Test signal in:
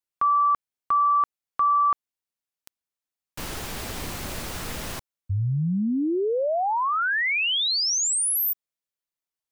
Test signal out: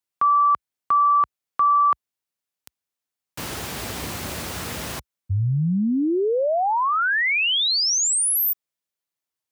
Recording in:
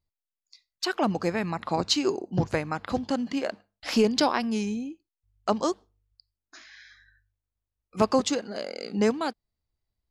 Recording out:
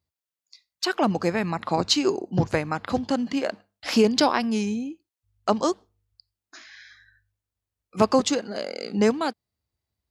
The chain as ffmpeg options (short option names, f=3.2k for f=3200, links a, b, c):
-af "highpass=f=59:w=0.5412,highpass=f=59:w=1.3066,volume=3dB"